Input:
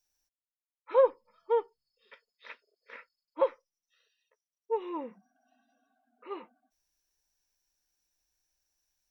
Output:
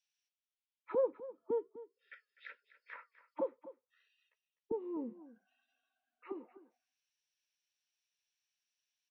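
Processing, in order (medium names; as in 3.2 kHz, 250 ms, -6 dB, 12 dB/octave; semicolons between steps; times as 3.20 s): auto-wah 250–3000 Hz, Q 2.4, down, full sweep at -36.5 dBFS; time-frequency box 1.58–2.69 s, 600–1300 Hz -22 dB; flange 1.1 Hz, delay 1.7 ms, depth 3.2 ms, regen +88%; on a send: delay 251 ms -16 dB; on the sum: trim +8 dB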